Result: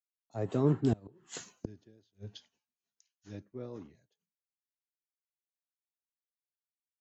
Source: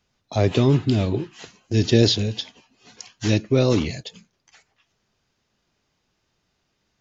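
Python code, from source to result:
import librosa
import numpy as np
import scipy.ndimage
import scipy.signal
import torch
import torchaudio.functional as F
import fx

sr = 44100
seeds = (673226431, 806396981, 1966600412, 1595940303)

y = fx.doppler_pass(x, sr, speed_mps=18, closest_m=2.2, pass_at_s=1.46)
y = fx.low_shelf(y, sr, hz=94.0, db=-6.5)
y = fx.gate_flip(y, sr, shuts_db=-25.0, range_db=-26)
y = fx.band_shelf(y, sr, hz=3500.0, db=-11.0, octaves=1.7)
y = fx.band_widen(y, sr, depth_pct=100)
y = y * 10.0 ** (1.5 / 20.0)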